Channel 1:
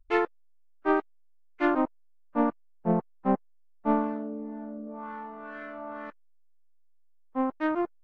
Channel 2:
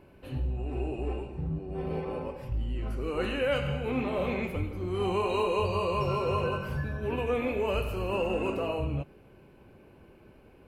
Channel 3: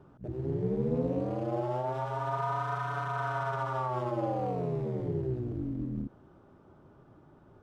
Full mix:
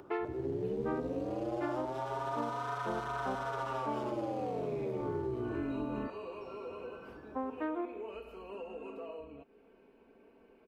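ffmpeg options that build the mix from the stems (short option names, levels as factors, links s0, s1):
-filter_complex "[0:a]lowpass=1300,aemphasis=mode=production:type=bsi,volume=0.944,asplit=2[s0][s1];[s1]volume=0.188[s2];[1:a]lowpass=f=2800:p=1,aecho=1:1:4.4:0.65,acompressor=threshold=0.01:ratio=2.5,adelay=400,volume=0.447[s3];[2:a]equalizer=f=91:w=1.2:g=6.5,acompressor=mode=upward:threshold=0.00282:ratio=2.5,volume=1.33[s4];[s2]aecho=0:1:77|154|231|308|385|462|539:1|0.48|0.23|0.111|0.0531|0.0255|0.0122[s5];[s0][s3][s4][s5]amix=inputs=4:normalize=0,lowshelf=f=210:t=q:w=1.5:g=-11.5,acrossover=split=130|3000[s6][s7][s8];[s7]acompressor=threshold=0.02:ratio=5[s9];[s6][s9][s8]amix=inputs=3:normalize=0"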